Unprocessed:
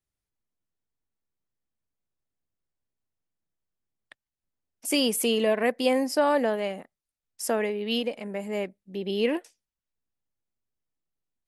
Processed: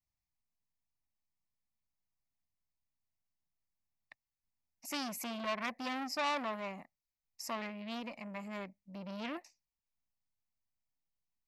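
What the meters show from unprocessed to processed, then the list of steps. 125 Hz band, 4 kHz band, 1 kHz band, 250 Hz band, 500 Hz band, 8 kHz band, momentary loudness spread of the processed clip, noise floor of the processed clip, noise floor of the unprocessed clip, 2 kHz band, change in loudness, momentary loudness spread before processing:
no reading, -12.5 dB, -7.5 dB, -13.5 dB, -18.5 dB, -14.0 dB, 12 LU, under -85 dBFS, under -85 dBFS, -8.5 dB, -13.0 dB, 11 LU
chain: dynamic bell 5.7 kHz, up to -3 dB, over -44 dBFS, Q 0.71; static phaser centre 2.2 kHz, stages 8; transformer saturation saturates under 2.5 kHz; trim -3 dB

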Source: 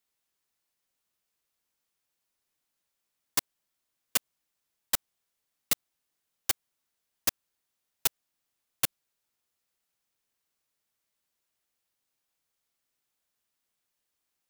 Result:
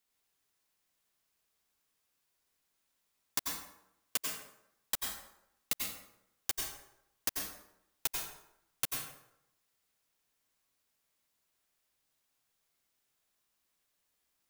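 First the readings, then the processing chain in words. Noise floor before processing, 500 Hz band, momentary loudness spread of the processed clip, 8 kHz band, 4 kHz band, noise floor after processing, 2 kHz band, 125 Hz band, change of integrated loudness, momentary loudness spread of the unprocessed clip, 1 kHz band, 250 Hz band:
-83 dBFS, -5.0 dB, 14 LU, -4.5 dB, -4.5 dB, -80 dBFS, -4.0 dB, -5.0 dB, -6.0 dB, 1 LU, -4.0 dB, -4.0 dB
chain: compression, threshold -31 dBFS, peak gain reduction 10.5 dB; plate-style reverb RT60 0.8 s, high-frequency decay 0.65×, pre-delay 80 ms, DRR 0 dB

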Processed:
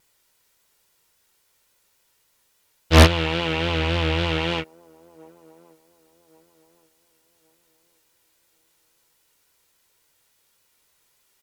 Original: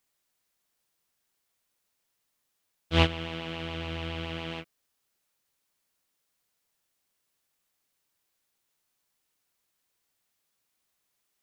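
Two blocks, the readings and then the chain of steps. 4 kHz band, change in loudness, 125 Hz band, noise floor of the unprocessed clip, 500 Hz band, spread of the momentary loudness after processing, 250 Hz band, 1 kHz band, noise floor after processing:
+9.5 dB, +11.0 dB, +12.0 dB, -79 dBFS, +12.0 dB, 10 LU, +11.0 dB, +11.0 dB, -67 dBFS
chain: comb 2.1 ms, depth 33%; vibrato 3.6 Hz 65 cents; sine folder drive 6 dB, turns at -6 dBFS; on a send: feedback echo behind a band-pass 1123 ms, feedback 32%, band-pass 480 Hz, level -24 dB; on the sum: loudspeaker Doppler distortion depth 0.95 ms; trim +2.5 dB

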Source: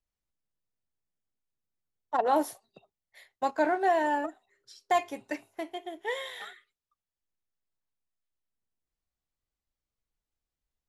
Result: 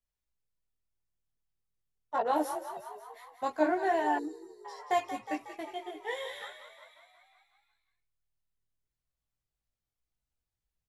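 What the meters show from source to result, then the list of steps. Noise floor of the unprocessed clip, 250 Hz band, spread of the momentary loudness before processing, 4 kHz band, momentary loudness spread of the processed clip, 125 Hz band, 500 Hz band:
under -85 dBFS, -0.5 dB, 14 LU, -2.5 dB, 19 LU, no reading, -2.5 dB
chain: frequency-shifting echo 182 ms, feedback 63%, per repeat +39 Hz, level -10.5 dB; chorus voices 4, 0.86 Hz, delay 18 ms, depth 1.5 ms; time-frequency box 4.19–4.65 s, 490–3700 Hz -25 dB

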